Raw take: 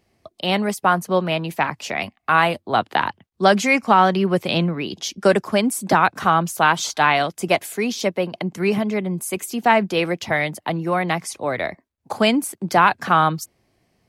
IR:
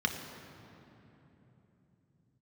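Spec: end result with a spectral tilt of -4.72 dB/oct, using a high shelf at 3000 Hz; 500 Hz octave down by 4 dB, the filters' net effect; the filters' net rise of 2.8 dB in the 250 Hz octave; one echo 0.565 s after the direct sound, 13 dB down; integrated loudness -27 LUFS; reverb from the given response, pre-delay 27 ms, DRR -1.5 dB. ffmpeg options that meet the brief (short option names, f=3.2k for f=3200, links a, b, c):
-filter_complex "[0:a]equalizer=f=250:t=o:g=5.5,equalizer=f=500:t=o:g=-7,highshelf=f=3k:g=-3,aecho=1:1:565:0.224,asplit=2[a][b];[1:a]atrim=start_sample=2205,adelay=27[c];[b][c]afir=irnorm=-1:irlink=0,volume=-6dB[d];[a][d]amix=inputs=2:normalize=0,volume=-11.5dB"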